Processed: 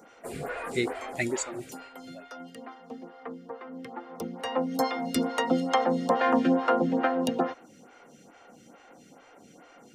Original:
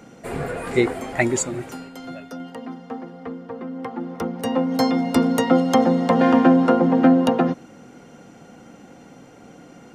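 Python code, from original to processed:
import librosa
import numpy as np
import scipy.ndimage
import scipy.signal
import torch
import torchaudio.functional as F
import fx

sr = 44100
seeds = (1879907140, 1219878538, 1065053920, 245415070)

y = fx.low_shelf(x, sr, hz=470.0, db=-10.5)
y = fx.stagger_phaser(y, sr, hz=2.3)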